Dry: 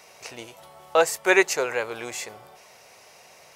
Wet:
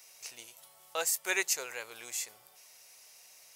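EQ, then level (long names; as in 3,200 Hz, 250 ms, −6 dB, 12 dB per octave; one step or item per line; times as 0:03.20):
first-order pre-emphasis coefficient 0.9
0.0 dB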